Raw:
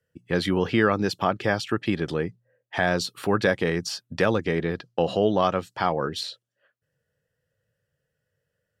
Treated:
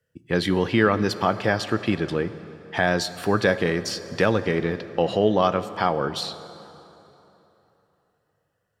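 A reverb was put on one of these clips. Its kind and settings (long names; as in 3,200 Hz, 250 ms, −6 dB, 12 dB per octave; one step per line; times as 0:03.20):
dense smooth reverb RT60 3.4 s, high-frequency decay 0.7×, DRR 12.5 dB
level +1.5 dB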